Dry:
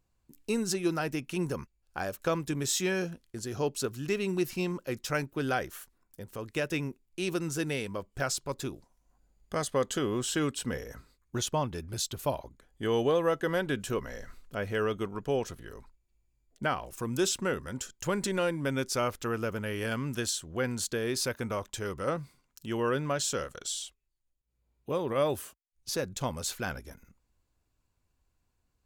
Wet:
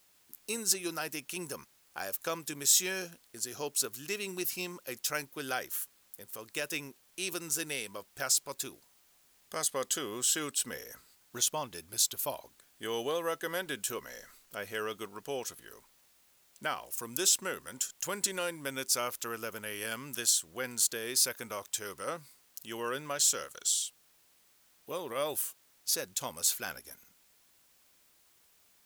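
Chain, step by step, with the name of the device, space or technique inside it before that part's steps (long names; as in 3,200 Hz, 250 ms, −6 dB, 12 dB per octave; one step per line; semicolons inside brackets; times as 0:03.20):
turntable without a phono preamp (RIAA equalisation recording; white noise bed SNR 30 dB)
level −4.5 dB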